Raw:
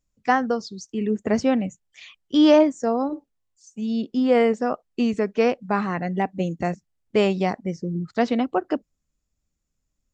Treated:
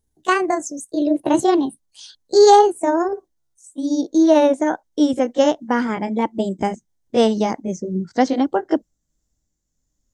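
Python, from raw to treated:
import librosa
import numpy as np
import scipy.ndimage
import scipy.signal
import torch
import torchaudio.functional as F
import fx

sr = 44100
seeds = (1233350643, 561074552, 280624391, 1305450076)

y = fx.pitch_glide(x, sr, semitones=7.0, runs='ending unshifted')
y = fx.graphic_eq_31(y, sr, hz=(315, 1250, 2500, 6300), db=(3, -6, -11, 7))
y = F.gain(torch.from_numpy(y), 5.0).numpy()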